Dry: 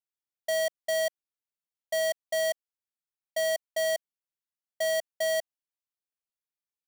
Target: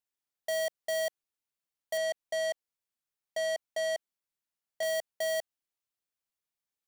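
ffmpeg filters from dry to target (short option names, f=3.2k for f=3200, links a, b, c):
-filter_complex "[0:a]asettb=1/sr,asplit=3[a][b][c];[a]atrim=end=1.974[d];[b]atrim=start=1.97:end=4.83,asetpts=PTS-STARTPTS,afade=t=in:d=0.004:c=qsin,afade=t=out:st=2.856:d=0.004:c=qsin,acrossover=split=4000[e][f];[f]acompressor=threshold=-43dB:ratio=4:attack=1:release=60[g];[e][g]amix=inputs=2:normalize=0[h];[c]atrim=start=4.826[i];[d][h]acrossfade=d=0.004:c1=hsin:c2=qsin[j];[j][i]acrossfade=d=0.004:c1=qsin:c2=hsin,asoftclip=type=hard:threshold=-32dB,volume=2dB"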